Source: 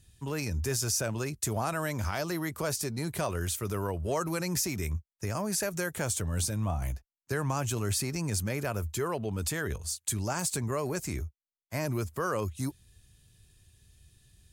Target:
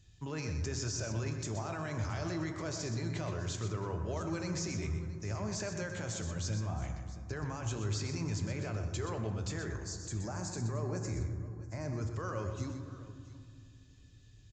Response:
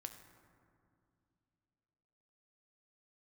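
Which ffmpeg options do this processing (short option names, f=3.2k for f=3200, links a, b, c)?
-filter_complex "[0:a]aresample=16000,aresample=44100,alimiter=level_in=4.5dB:limit=-24dB:level=0:latency=1:release=37,volume=-4.5dB,asettb=1/sr,asplit=3[a][b][c];[a]atrim=end=9.534[d];[b]atrim=start=9.53:end=12.02,asetpts=PTS-STARTPTS,afade=t=in:d=0.004:c=qsin,afade=t=out:st=2.486:d=0.004:c=qsin,equalizer=f=3.1k:t=o:w=0.74:g=-12.5[e];[c]atrim=start=12.016[f];[d][e]acrossfade=d=0.004:c1=hsin:c2=qsin[g];[g][f]acrossfade=d=0.004:c1=qsin:c2=hsin,aecho=1:1:124|673:0.355|0.133[h];[1:a]atrim=start_sample=2205[i];[h][i]afir=irnorm=-1:irlink=0,volume=3dB"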